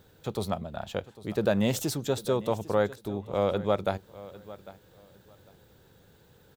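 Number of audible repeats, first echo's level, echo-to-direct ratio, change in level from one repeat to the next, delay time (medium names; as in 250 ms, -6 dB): 2, -18.0 dB, -18.0 dB, -13.5 dB, 800 ms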